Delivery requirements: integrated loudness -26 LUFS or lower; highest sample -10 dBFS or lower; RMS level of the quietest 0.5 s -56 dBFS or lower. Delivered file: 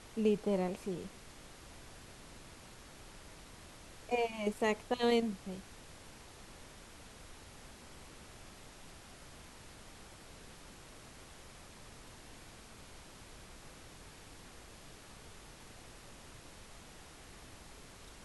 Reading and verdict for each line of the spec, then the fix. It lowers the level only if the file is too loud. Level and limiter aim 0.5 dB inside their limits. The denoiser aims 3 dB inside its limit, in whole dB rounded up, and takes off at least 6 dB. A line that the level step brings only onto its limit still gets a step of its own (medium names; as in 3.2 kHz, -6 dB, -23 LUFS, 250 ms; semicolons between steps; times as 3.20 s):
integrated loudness -35.0 LUFS: pass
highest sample -19.5 dBFS: pass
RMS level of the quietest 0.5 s -54 dBFS: fail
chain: noise reduction 6 dB, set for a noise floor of -54 dBFS